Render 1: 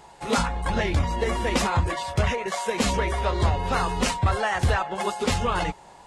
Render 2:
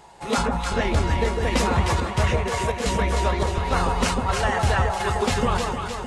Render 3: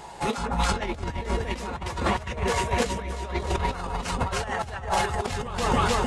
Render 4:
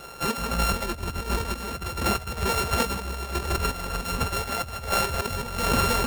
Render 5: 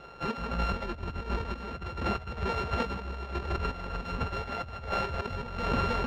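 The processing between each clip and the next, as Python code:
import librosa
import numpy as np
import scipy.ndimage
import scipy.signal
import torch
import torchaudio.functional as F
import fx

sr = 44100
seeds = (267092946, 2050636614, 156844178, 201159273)

y1 = fx.chopper(x, sr, hz=1.4, depth_pct=65, duty_pct=80)
y1 = fx.echo_alternate(y1, sr, ms=153, hz=1100.0, feedback_pct=77, wet_db=-2)
y2 = fx.over_compress(y1, sr, threshold_db=-27.0, ratio=-0.5)
y2 = y2 * librosa.db_to_amplitude(1.0)
y3 = np.r_[np.sort(y2[:len(y2) // 32 * 32].reshape(-1, 32), axis=1).ravel(), y2[len(y2) // 32 * 32:]]
y4 = fx.air_absorb(y3, sr, metres=220.0)
y4 = y4 * librosa.db_to_amplitude(-4.5)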